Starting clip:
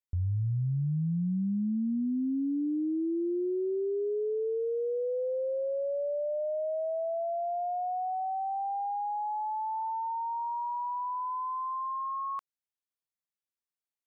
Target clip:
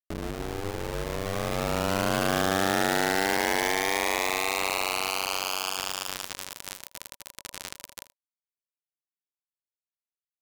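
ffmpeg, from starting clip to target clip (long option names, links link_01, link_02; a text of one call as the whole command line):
ffmpeg -i in.wav -filter_complex "[0:a]afwtdn=0.01,tremolo=f=70:d=0.824,acrusher=bits=4:mix=0:aa=0.000001,bandreject=frequency=570:width=12,aeval=exprs='val(0)*sin(2*PI*150*n/s)':channel_layout=same,asplit=2[link_01][link_02];[link_02]aecho=0:1:106:0.133[link_03];[link_01][link_03]amix=inputs=2:normalize=0,asetrate=59535,aresample=44100,dynaudnorm=framelen=270:gausssize=13:maxgain=11dB" out.wav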